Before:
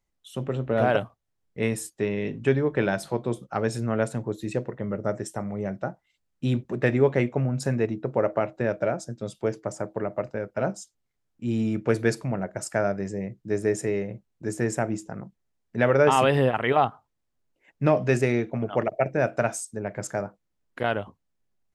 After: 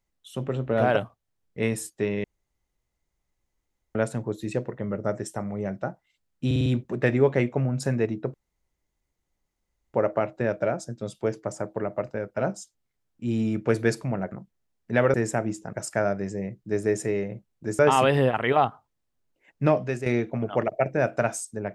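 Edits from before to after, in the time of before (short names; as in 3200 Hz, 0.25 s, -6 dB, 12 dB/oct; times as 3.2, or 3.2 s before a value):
2.24–3.95 room tone
6.46 stutter 0.05 s, 5 plays
8.14 insert room tone 1.60 s
12.52–14.58 swap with 15.17–15.99
17.91–18.26 fade out quadratic, to -9.5 dB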